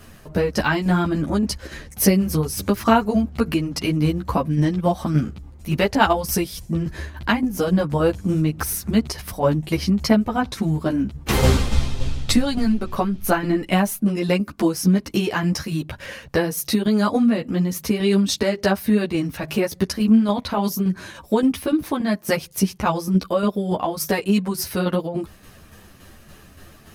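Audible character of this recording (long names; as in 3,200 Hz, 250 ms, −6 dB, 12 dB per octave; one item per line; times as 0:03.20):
tremolo saw down 3.5 Hz, depth 50%
a shimmering, thickened sound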